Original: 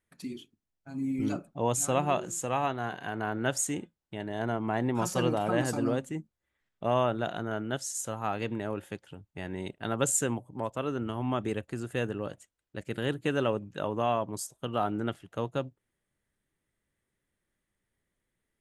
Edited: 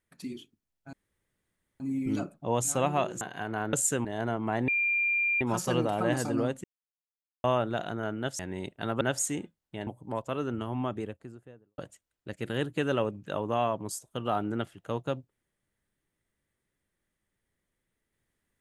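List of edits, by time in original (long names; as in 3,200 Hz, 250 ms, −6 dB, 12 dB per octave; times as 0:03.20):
0:00.93: splice in room tone 0.87 s
0:02.34–0:02.88: remove
0:03.40–0:04.26: swap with 0:10.03–0:10.35
0:04.89: insert tone 2,390 Hz −24 dBFS 0.73 s
0:06.12–0:06.92: silence
0:07.87–0:09.41: remove
0:11.01–0:12.26: fade out and dull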